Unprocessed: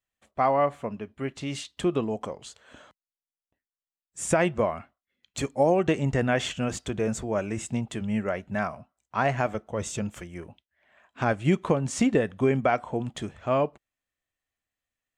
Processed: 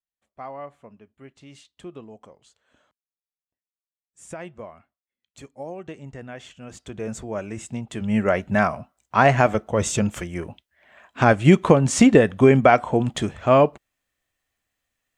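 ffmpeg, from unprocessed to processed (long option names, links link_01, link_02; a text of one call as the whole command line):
ffmpeg -i in.wav -af "volume=9dB,afade=type=in:start_time=6.61:duration=0.56:silence=0.266073,afade=type=in:start_time=7.87:duration=0.45:silence=0.281838" out.wav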